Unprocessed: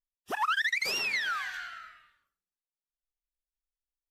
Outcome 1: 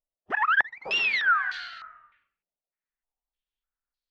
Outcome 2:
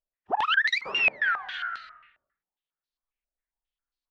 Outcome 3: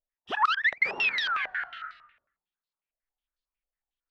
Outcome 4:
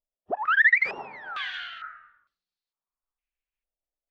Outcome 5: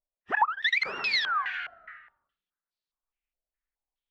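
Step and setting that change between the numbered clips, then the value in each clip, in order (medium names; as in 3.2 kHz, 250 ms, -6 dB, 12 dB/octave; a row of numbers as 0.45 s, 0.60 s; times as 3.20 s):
step-sequenced low-pass, rate: 3.3 Hz, 7.4 Hz, 11 Hz, 2.2 Hz, 4.8 Hz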